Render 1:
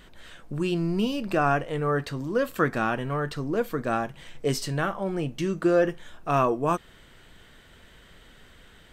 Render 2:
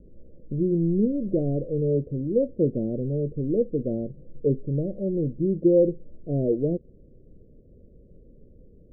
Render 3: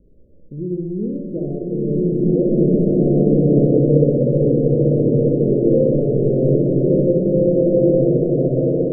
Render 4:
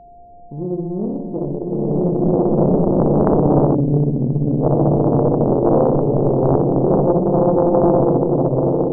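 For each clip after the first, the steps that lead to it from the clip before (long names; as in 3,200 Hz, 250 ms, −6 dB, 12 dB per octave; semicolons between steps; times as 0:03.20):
Butterworth low-pass 560 Hz 72 dB per octave; level +3.5 dB
flutter between parallel walls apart 10.5 metres, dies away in 1 s; slow-attack reverb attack 2,090 ms, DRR −11 dB; level −3.5 dB
steady tone 700 Hz −42 dBFS; gain on a spectral selection 0:03.75–0:04.61, 320–730 Hz −21 dB; highs frequency-modulated by the lows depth 0.99 ms; level +1 dB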